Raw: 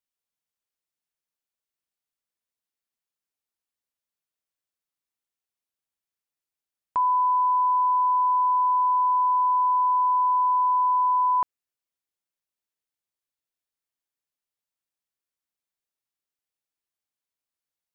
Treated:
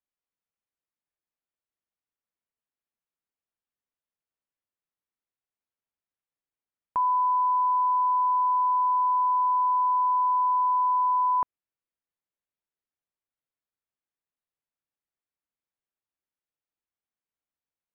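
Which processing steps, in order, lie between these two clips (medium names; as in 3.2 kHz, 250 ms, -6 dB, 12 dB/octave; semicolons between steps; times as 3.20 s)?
distance through air 420 m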